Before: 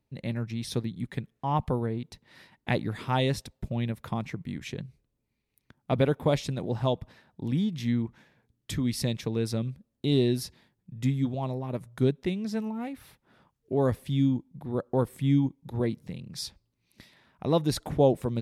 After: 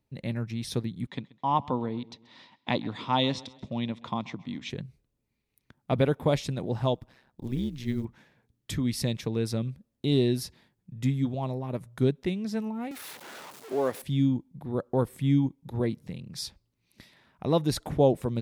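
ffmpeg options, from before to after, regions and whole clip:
-filter_complex "[0:a]asettb=1/sr,asplit=3[a][b][c];[a]atrim=end=1.074[d];[b]atrim=start=1.07:end=4.7,asetpts=PTS-STARTPTS,afade=t=in:d=0.004:c=qsin,afade=t=out:st=3.626:d=0.004:c=qsin,highpass=150,equalizer=f=160:t=q:w=4:g=-4,equalizer=f=260:t=q:w=4:g=4,equalizer=f=400:t=q:w=4:g=-5,equalizer=f=1k:t=q:w=4:g=7,equalizer=f=1.6k:t=q:w=4:g=-7,equalizer=f=3.5k:t=q:w=4:g=7,lowpass=f=6.5k:w=0.5412,lowpass=f=6.5k:w=1.3066,aecho=1:1:132|264|396:0.0841|0.0379|0.017,atrim=end_sample=160083[e];[c]atrim=start=4.696[f];[d][e]acrossfade=d=0.004:c1=hsin:c2=qsin[g];[g][f]acrossfade=d=0.004:c1=qsin:c2=hsin,asettb=1/sr,asplit=3[h][i][j];[h]atrim=end=6.954[k];[i]atrim=start=6.95:end=8.05,asetpts=PTS-STARTPTS,afade=t=in:d=0.004:c=qsin,afade=t=out:st=1.096:d=0.004:c=qsin,acrusher=bits=9:mode=log:mix=0:aa=0.000001,tremolo=f=130:d=0.788[l];[j]atrim=start=8.046[m];[k][l]acrossfade=d=0.004:c1=hsin:c2=qsin[n];[n][m]acrossfade=d=0.004:c1=qsin:c2=hsin,asettb=1/sr,asplit=3[o][p][q];[o]atrim=end=12.914[r];[p]atrim=start=12.91:end=14.02,asetpts=PTS-STARTPTS,afade=t=in:d=0.004:c=qsin,afade=t=out:st=1.106:d=0.004:c=qsin,aeval=exprs='val(0)+0.5*0.0133*sgn(val(0))':c=same,highpass=360[s];[q]atrim=start=14.016[t];[r][s]acrossfade=d=0.004:c1=hsin:c2=qsin[u];[u][t]acrossfade=d=0.004:c1=qsin:c2=hsin"

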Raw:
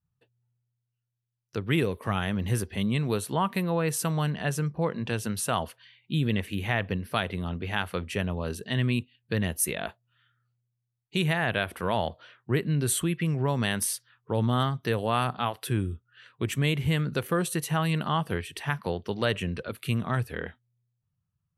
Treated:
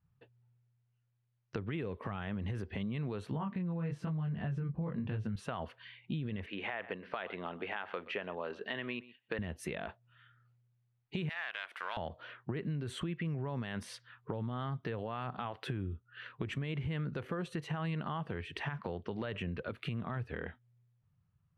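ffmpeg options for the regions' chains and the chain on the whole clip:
-filter_complex "[0:a]asettb=1/sr,asplit=3[a][b][c];[a]atrim=end=3.314[d];[b]atrim=start=3.31:end=5.36,asetpts=PTS-STARTPTS,afade=t=in:d=0.004:c=qsin,afade=t=out:st=2.046:d=0.004:c=qsin,bass=f=250:g=12,treble=f=4k:g=-7,flanger=delay=18.5:depth=5:speed=1[e];[c]atrim=start=5.356[f];[d][e]acrossfade=d=0.004:c1=hsin:c2=qsin[g];[g][f]acrossfade=d=0.004:c1=qsin:c2=hsin,asettb=1/sr,asplit=3[h][i][j];[h]atrim=end=6.464[k];[i]atrim=start=6.46:end=9.39,asetpts=PTS-STARTPTS,afade=t=in:d=0.004:c=qsin,afade=t=out:st=2.926:d=0.004:c=qsin,highpass=440,lowpass=3.9k,aecho=1:1:122:0.075,atrim=end_sample=129213[l];[j]atrim=start=9.386[m];[k][l]acrossfade=d=0.004:c1=hsin:c2=qsin[n];[n][m]acrossfade=d=0.004:c1=qsin:c2=hsin,asettb=1/sr,asplit=3[o][p][q];[o]atrim=end=11.294[r];[p]atrim=start=11.29:end=11.97,asetpts=PTS-STARTPTS,afade=t=in:d=0.004:c=qsin,afade=t=out:st=0.676:d=0.004:c=qsin,aeval=exprs='if(lt(val(0),0),0.447*val(0),val(0))':c=same,highpass=1.3k,highshelf=f=4.7k:g=5.5[s];[q]atrim=start=11.966[t];[r][s]acrossfade=d=0.004:c1=hsin:c2=qsin[u];[u][t]acrossfade=d=0.004:c1=qsin:c2=hsin,lowpass=2.6k,alimiter=limit=-22.5dB:level=0:latency=1:release=44,acompressor=threshold=-43dB:ratio=4,volume=6dB"

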